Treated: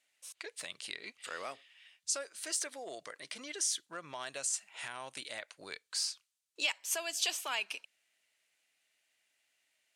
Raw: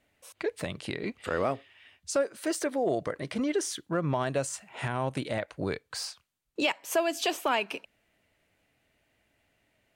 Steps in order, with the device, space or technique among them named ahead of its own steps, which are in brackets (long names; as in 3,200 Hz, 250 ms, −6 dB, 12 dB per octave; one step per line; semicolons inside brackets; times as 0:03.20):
piezo pickup straight into a mixer (low-pass filter 8,100 Hz 12 dB per octave; first difference)
level +5.5 dB